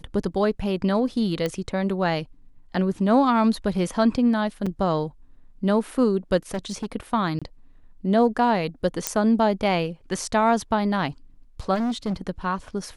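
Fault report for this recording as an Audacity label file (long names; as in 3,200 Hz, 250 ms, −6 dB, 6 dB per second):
1.460000	1.460000	click −13 dBFS
4.660000	4.660000	drop-out 4.9 ms
6.540000	6.860000	clipping −23.5 dBFS
7.390000	7.420000	drop-out 26 ms
9.070000	9.070000	click −4 dBFS
11.740000	12.140000	clipping −22 dBFS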